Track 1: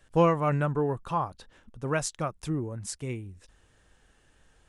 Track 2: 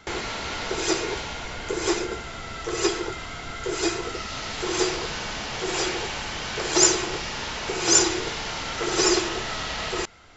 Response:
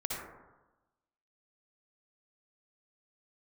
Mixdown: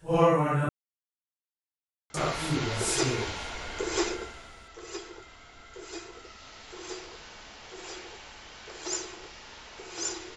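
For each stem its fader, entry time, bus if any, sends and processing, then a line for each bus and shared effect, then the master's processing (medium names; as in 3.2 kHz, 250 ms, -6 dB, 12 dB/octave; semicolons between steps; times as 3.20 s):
+1.5 dB, 0.00 s, muted 0.69–2.14 s, no send, phase randomisation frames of 200 ms; treble shelf 6.3 kHz +9 dB
4.08 s -3.5 dB -> 4.66 s -15.5 dB, 2.10 s, no send, peaking EQ 150 Hz -7 dB 1 oct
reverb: none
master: none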